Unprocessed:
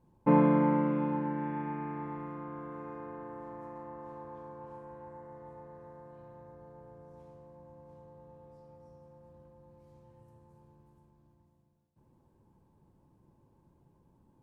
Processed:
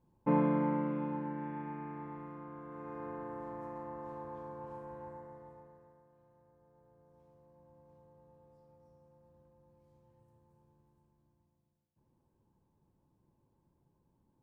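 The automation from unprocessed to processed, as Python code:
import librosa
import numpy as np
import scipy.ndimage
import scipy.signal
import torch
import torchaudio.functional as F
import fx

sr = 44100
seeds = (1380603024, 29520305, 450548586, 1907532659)

y = fx.gain(x, sr, db=fx.line((2.64, -5.5), (3.06, 1.0), (5.07, 1.0), (5.61, -6.5), (6.08, -15.5), (6.59, -15.5), (7.73, -8.5)))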